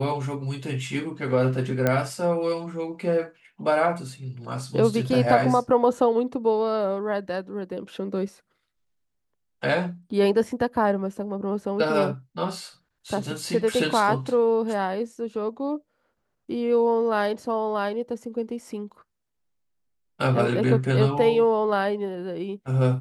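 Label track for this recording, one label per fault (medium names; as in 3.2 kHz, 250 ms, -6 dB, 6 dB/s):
1.870000	1.870000	pop -9 dBFS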